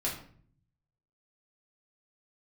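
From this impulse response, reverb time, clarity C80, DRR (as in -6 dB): 0.55 s, 10.5 dB, -5.0 dB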